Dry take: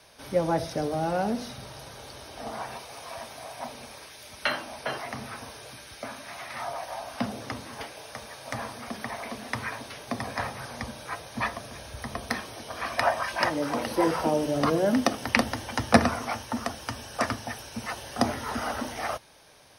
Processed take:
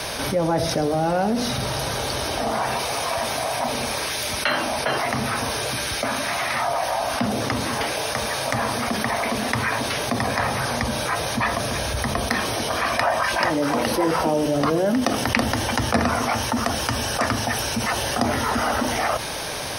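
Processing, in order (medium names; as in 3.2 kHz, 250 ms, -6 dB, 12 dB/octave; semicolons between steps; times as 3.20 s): level flattener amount 70%; trim -4 dB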